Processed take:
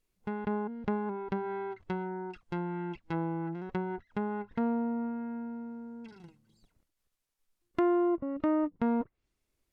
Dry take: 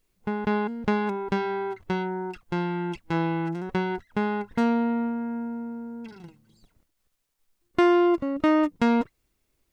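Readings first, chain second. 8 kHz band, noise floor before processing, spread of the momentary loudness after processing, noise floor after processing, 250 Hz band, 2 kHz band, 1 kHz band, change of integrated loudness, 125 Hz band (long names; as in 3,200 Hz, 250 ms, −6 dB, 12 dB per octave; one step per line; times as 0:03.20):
can't be measured, −75 dBFS, 11 LU, −83 dBFS, −7.0 dB, −12.0 dB, −8.5 dB, −7.5 dB, −7.0 dB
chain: treble cut that deepens with the level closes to 1,100 Hz, closed at −22 dBFS
level −7 dB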